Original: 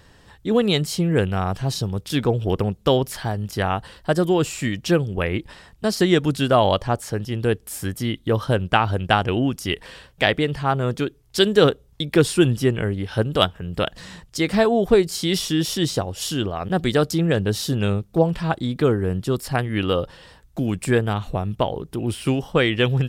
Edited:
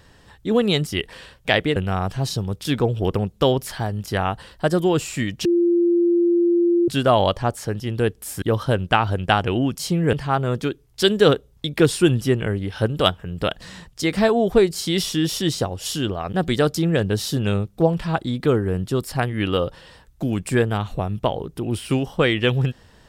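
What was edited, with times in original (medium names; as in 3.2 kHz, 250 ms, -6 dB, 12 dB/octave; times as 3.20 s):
0.87–1.21 s: swap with 9.60–10.49 s
4.90–6.33 s: bleep 345 Hz -14 dBFS
7.87–8.23 s: delete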